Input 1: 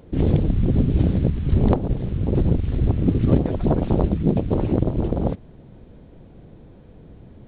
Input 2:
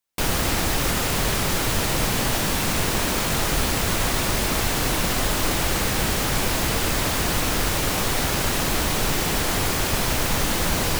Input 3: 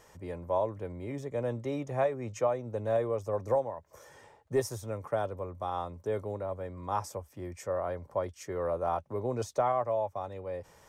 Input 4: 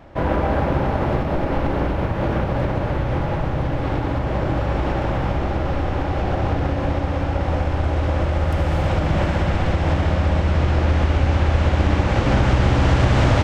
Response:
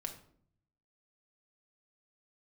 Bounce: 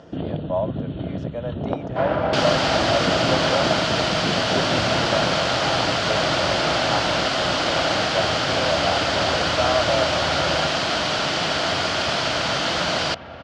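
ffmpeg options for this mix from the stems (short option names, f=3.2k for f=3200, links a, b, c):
-filter_complex "[0:a]acompressor=threshold=-30dB:ratio=2,bandreject=f=2.2k:w=5.2,volume=1.5dB,asplit=2[a][b];[b]volume=-9dB[c];[1:a]adelay=2150,volume=-0.5dB[d];[2:a]volume=-0.5dB,asplit=2[e][f];[3:a]adelay=1800,volume=-6dB,asplit=2[g][h];[h]volume=-9dB[i];[f]apad=whole_len=671807[j];[g][j]sidechaingate=range=-33dB:threshold=-45dB:ratio=16:detection=peak[k];[4:a]atrim=start_sample=2205[l];[c][i]amix=inputs=2:normalize=0[m];[m][l]afir=irnorm=-1:irlink=0[n];[a][d][e][k][n]amix=inputs=5:normalize=0,highpass=140,equalizer=f=220:t=q:w=4:g=-4,equalizer=f=410:t=q:w=4:g=-4,equalizer=f=650:t=q:w=4:g=9,equalizer=f=1.4k:t=q:w=4:g=7,equalizer=f=3.1k:t=q:w=4:g=7,equalizer=f=4.6k:t=q:w=4:g=6,lowpass=f=5.8k:w=0.5412,lowpass=f=5.8k:w=1.3066"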